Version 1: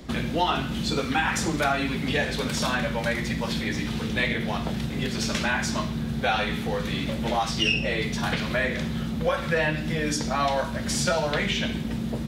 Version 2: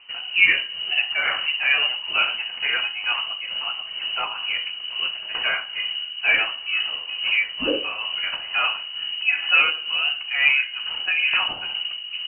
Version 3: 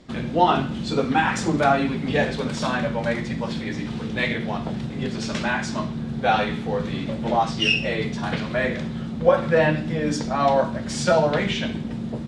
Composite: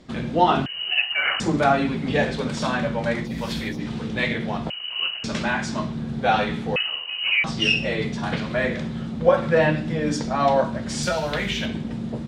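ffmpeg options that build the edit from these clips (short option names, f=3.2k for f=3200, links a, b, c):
-filter_complex "[1:a]asplit=3[a][b][c];[0:a]asplit=2[d][e];[2:a]asplit=6[f][g][h][i][j][k];[f]atrim=end=0.662[l];[a]atrim=start=0.658:end=1.402[m];[g]atrim=start=1.398:end=3.39[n];[d]atrim=start=3.23:end=3.83[o];[h]atrim=start=3.67:end=4.702[p];[b]atrim=start=4.698:end=5.242[q];[i]atrim=start=5.238:end=6.762[r];[c]atrim=start=6.758:end=7.442[s];[j]atrim=start=7.438:end=11.032[t];[e]atrim=start=11.028:end=11.662[u];[k]atrim=start=11.658[v];[l][m]acrossfade=d=0.004:c1=hsin:c2=hsin[w];[w][n]acrossfade=d=0.004:c1=hsin:c2=hsin[x];[x][o]acrossfade=d=0.16:c1=tri:c2=tri[y];[y][p]acrossfade=d=0.16:c1=tri:c2=tri[z];[z][q]acrossfade=d=0.004:c1=hsin:c2=hsin[aa];[aa][r]acrossfade=d=0.004:c1=hsin:c2=hsin[ab];[ab][s]acrossfade=d=0.004:c1=hsin:c2=hsin[ac];[ac][t]acrossfade=d=0.004:c1=hsin:c2=hsin[ad];[ad][u]acrossfade=d=0.004:c1=hsin:c2=hsin[ae];[ae][v]acrossfade=d=0.004:c1=hsin:c2=hsin"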